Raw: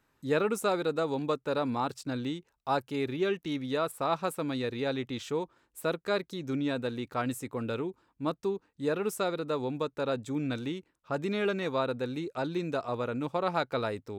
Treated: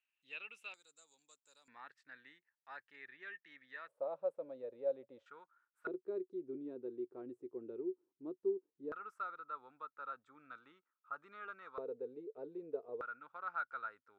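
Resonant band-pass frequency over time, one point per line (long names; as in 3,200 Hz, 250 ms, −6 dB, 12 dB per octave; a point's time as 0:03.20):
resonant band-pass, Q 11
2,700 Hz
from 0:00.74 7,300 Hz
from 0:01.68 1,800 Hz
from 0:03.88 560 Hz
from 0:05.26 1,400 Hz
from 0:05.87 370 Hz
from 0:08.92 1,300 Hz
from 0:11.78 440 Hz
from 0:13.01 1,400 Hz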